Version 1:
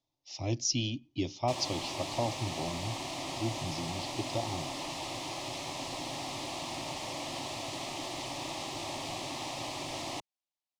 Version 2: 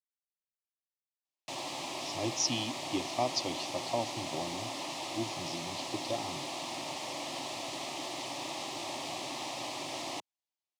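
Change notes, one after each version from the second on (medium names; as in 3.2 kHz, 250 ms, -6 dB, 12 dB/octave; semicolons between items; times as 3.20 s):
speech: entry +1.75 s; master: add Bessel high-pass 210 Hz, order 2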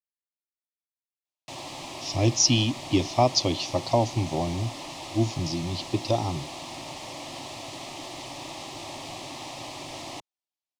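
speech +10.0 dB; master: remove Bessel high-pass 210 Hz, order 2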